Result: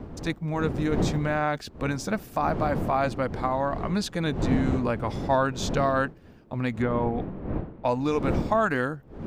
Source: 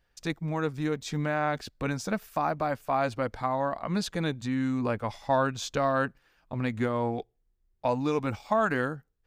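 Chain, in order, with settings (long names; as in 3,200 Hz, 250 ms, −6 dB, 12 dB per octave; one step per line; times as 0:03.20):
wind on the microphone 290 Hz −34 dBFS
0:06.82–0:07.85: low-pass filter 2,600 Hz 12 dB per octave
level +2 dB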